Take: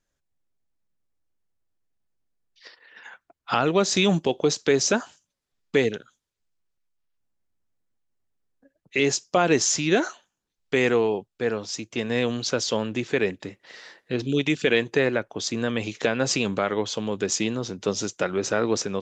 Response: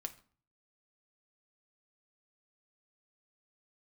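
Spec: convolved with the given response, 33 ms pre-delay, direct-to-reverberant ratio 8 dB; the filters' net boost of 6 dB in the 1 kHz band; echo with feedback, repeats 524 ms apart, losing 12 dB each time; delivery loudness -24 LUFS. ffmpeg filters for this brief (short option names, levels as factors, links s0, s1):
-filter_complex "[0:a]equalizer=f=1000:t=o:g=8.5,aecho=1:1:524|1048|1572:0.251|0.0628|0.0157,asplit=2[s0][s1];[1:a]atrim=start_sample=2205,adelay=33[s2];[s1][s2]afir=irnorm=-1:irlink=0,volume=0.531[s3];[s0][s3]amix=inputs=2:normalize=0,volume=0.794"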